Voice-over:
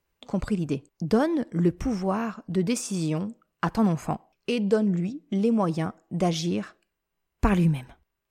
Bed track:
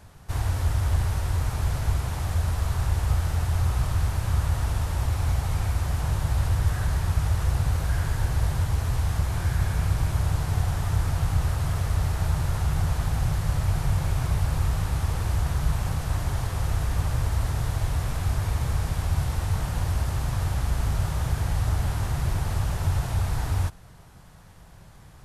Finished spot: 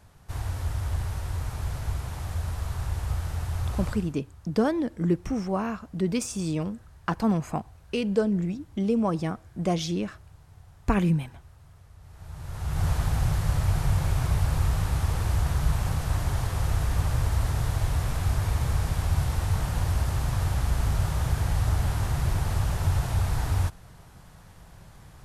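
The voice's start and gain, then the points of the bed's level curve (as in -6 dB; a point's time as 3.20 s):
3.45 s, -1.5 dB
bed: 3.89 s -5.5 dB
4.22 s -26.5 dB
11.98 s -26.5 dB
12.86 s 0 dB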